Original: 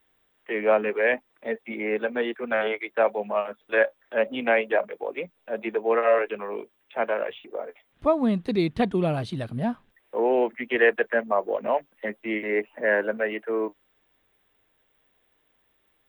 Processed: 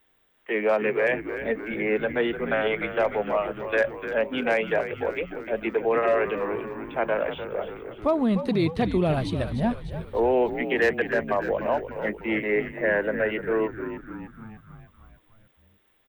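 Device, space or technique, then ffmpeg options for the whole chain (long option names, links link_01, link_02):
clipper into limiter: -filter_complex "[0:a]asoftclip=type=hard:threshold=-12.5dB,alimiter=limit=-17dB:level=0:latency=1,asplit=8[link_01][link_02][link_03][link_04][link_05][link_06][link_07][link_08];[link_02]adelay=299,afreqshift=-75,volume=-10dB[link_09];[link_03]adelay=598,afreqshift=-150,volume=-14.6dB[link_10];[link_04]adelay=897,afreqshift=-225,volume=-19.2dB[link_11];[link_05]adelay=1196,afreqshift=-300,volume=-23.7dB[link_12];[link_06]adelay=1495,afreqshift=-375,volume=-28.3dB[link_13];[link_07]adelay=1794,afreqshift=-450,volume=-32.9dB[link_14];[link_08]adelay=2093,afreqshift=-525,volume=-37.5dB[link_15];[link_01][link_09][link_10][link_11][link_12][link_13][link_14][link_15]amix=inputs=8:normalize=0,volume=2dB"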